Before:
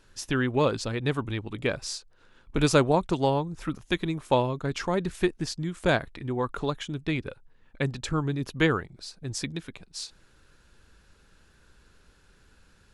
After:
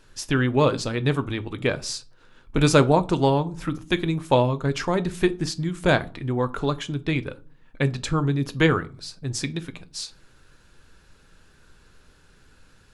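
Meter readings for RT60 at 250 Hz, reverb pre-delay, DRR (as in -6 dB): 0.55 s, 6 ms, 10.5 dB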